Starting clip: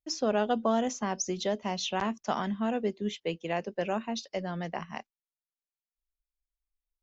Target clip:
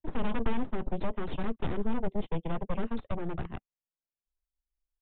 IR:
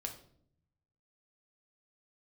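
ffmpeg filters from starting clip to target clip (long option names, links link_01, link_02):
-filter_complex "[0:a]aeval=exprs='0.178*(cos(1*acos(clip(val(0)/0.178,-1,1)))-cos(1*PI/2))+0.0891*(cos(3*acos(clip(val(0)/0.178,-1,1)))-cos(3*PI/2))+0.0282*(cos(8*acos(clip(val(0)/0.178,-1,1)))-cos(8*PI/2))':channel_layout=same,tiltshelf=frequency=970:gain=7.5,atempo=1.4,acrossover=split=160[link_01][link_02];[link_02]asoftclip=type=tanh:threshold=-29dB[link_03];[link_01][link_03]amix=inputs=2:normalize=0,aresample=8000,aresample=44100"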